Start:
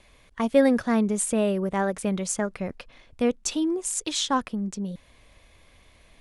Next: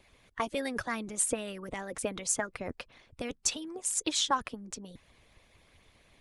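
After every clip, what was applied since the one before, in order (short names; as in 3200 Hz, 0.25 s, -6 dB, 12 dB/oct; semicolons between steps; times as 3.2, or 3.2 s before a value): harmonic-percussive split harmonic -17 dB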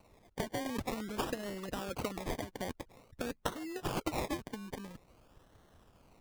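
compressor 6:1, threshold -32 dBFS, peak gain reduction 10 dB; decimation with a swept rate 26×, swing 60% 0.49 Hz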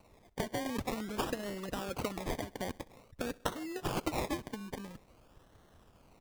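feedback echo 64 ms, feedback 58%, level -23 dB; gain +1 dB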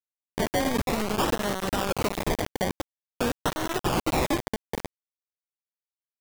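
one diode to ground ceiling -33.5 dBFS; companded quantiser 2-bit; gain +4 dB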